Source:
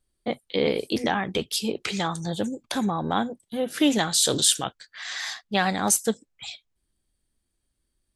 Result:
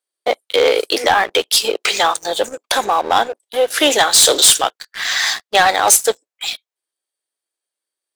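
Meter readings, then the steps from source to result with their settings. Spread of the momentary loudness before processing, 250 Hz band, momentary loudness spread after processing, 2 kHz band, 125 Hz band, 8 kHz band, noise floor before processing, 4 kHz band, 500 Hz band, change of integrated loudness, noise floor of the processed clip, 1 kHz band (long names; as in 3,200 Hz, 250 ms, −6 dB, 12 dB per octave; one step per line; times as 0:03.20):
14 LU, −3.0 dB, 12 LU, +13.0 dB, −9.0 dB, +11.0 dB, −78 dBFS, +12.0 dB, +11.0 dB, +10.5 dB, below −85 dBFS, +13.0 dB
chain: sub-octave generator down 2 octaves, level −3 dB
high-pass filter 460 Hz 24 dB per octave
leveller curve on the samples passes 3
level +3.5 dB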